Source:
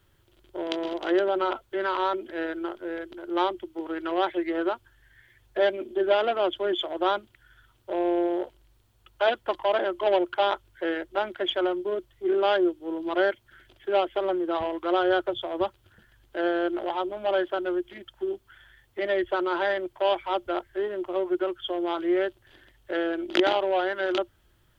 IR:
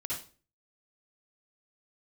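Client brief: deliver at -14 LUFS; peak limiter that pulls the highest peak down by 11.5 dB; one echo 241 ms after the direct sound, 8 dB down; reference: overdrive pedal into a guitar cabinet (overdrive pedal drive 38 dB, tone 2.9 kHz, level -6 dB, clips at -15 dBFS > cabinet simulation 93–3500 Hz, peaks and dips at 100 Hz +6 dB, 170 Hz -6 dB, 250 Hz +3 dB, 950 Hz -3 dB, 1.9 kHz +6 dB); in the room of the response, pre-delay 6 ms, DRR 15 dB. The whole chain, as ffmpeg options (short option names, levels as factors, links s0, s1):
-filter_complex "[0:a]alimiter=limit=0.126:level=0:latency=1,aecho=1:1:241:0.398,asplit=2[s0][s1];[1:a]atrim=start_sample=2205,adelay=6[s2];[s1][s2]afir=irnorm=-1:irlink=0,volume=0.133[s3];[s0][s3]amix=inputs=2:normalize=0,asplit=2[s4][s5];[s5]highpass=f=720:p=1,volume=79.4,asoftclip=type=tanh:threshold=0.178[s6];[s4][s6]amix=inputs=2:normalize=0,lowpass=f=2900:p=1,volume=0.501,highpass=93,equalizer=f=100:t=q:w=4:g=6,equalizer=f=170:t=q:w=4:g=-6,equalizer=f=250:t=q:w=4:g=3,equalizer=f=950:t=q:w=4:g=-3,equalizer=f=1900:t=q:w=4:g=6,lowpass=f=3500:w=0.5412,lowpass=f=3500:w=1.3066,volume=2.37"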